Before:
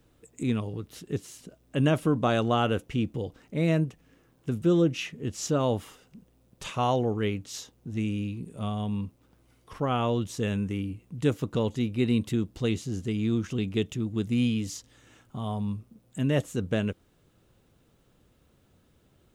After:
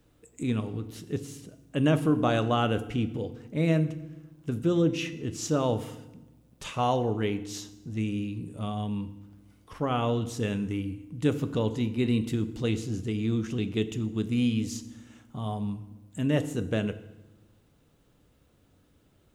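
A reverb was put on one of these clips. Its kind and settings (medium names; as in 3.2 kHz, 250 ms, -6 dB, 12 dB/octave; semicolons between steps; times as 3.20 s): FDN reverb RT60 0.99 s, low-frequency decay 1.55×, high-frequency decay 0.8×, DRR 10.5 dB; trim -1 dB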